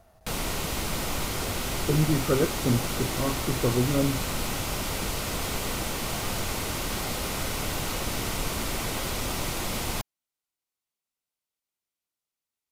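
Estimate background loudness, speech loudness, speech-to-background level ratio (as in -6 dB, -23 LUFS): -30.0 LUFS, -27.5 LUFS, 2.5 dB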